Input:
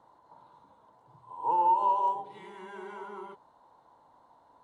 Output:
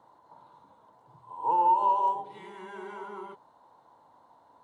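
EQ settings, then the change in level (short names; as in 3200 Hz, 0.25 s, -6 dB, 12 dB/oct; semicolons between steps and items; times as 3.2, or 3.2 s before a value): HPF 74 Hz; +1.5 dB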